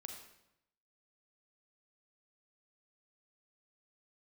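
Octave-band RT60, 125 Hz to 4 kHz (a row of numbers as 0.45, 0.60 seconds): 1.0, 0.90, 0.85, 0.80, 0.75, 0.70 seconds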